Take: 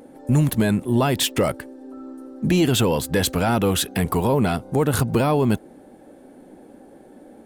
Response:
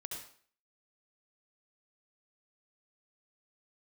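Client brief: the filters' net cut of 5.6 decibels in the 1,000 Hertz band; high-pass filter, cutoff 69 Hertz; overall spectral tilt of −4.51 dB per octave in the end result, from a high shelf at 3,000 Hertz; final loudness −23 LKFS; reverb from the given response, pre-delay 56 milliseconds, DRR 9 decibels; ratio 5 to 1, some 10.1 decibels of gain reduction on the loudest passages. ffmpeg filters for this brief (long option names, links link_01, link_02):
-filter_complex "[0:a]highpass=69,equalizer=frequency=1000:width_type=o:gain=-8.5,highshelf=frequency=3000:gain=5.5,acompressor=threshold=-26dB:ratio=5,asplit=2[link_01][link_02];[1:a]atrim=start_sample=2205,adelay=56[link_03];[link_02][link_03]afir=irnorm=-1:irlink=0,volume=-7dB[link_04];[link_01][link_04]amix=inputs=2:normalize=0,volume=6.5dB"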